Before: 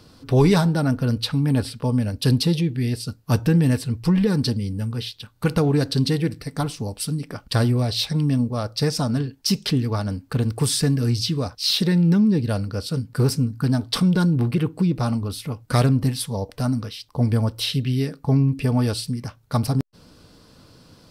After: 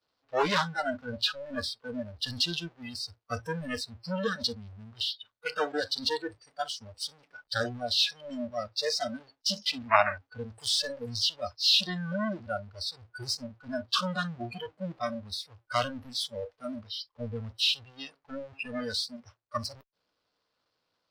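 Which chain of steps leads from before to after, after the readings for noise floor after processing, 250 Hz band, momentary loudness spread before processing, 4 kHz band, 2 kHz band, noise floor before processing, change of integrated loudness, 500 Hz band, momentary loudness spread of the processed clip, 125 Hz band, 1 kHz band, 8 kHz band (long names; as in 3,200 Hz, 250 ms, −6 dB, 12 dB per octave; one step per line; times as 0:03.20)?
−80 dBFS, −17.5 dB, 9 LU, −1.0 dB, −0.5 dB, −53 dBFS, −9.0 dB, −7.5 dB, 13 LU, −22.5 dB, −1.0 dB, −8.5 dB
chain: power curve on the samples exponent 0.35
downward expander −10 dBFS
gain on a spectral selection 0:09.91–0:10.18, 600–2,800 Hz +10 dB
three-way crossover with the lows and the highs turned down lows −18 dB, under 460 Hz, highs −23 dB, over 5,500 Hz
noise reduction from a noise print of the clip's start 25 dB
level −4.5 dB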